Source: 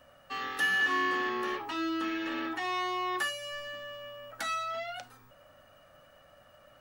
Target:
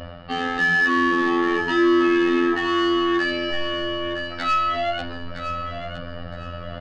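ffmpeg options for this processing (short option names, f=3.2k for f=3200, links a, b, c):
-filter_complex "[0:a]afftfilt=real='hypot(re,im)*cos(PI*b)':imag='0':win_size=2048:overlap=0.75,bass=f=250:g=5,treble=f=4k:g=1,asplit=2[a][b];[b]alimiter=limit=-24dB:level=0:latency=1:release=116,volume=2.5dB[c];[a][c]amix=inputs=2:normalize=0,lowshelf=f=470:g=9,areverse,acompressor=mode=upward:threshold=-32dB:ratio=2.5,areverse,aresample=11025,aresample=44100,asoftclip=type=tanh:threshold=-20dB,aecho=1:1:963|1926|2889:0.355|0.0993|0.0278,volume=8dB"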